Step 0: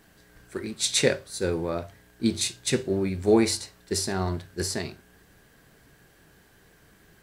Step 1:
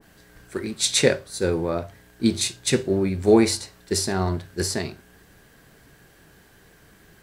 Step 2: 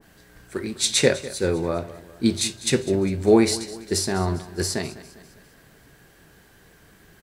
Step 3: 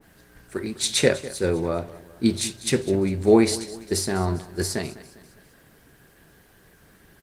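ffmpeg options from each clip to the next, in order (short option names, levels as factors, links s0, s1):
-af "adynamicequalizer=threshold=0.00891:dfrequency=1700:dqfactor=0.7:tfrequency=1700:tqfactor=0.7:attack=5:release=100:ratio=0.375:range=2:mode=cutabove:tftype=highshelf,volume=1.58"
-af "aecho=1:1:201|402|603|804:0.141|0.0692|0.0339|0.0166"
-ar 48000 -c:a libopus -b:a 24k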